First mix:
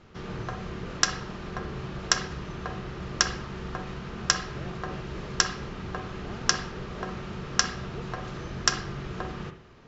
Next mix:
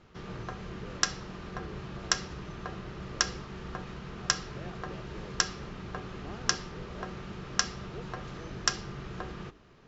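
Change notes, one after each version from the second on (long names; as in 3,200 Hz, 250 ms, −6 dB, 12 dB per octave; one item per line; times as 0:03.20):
reverb: off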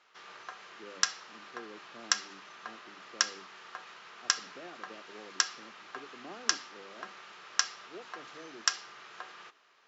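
background: add high-pass filter 1,000 Hz 12 dB per octave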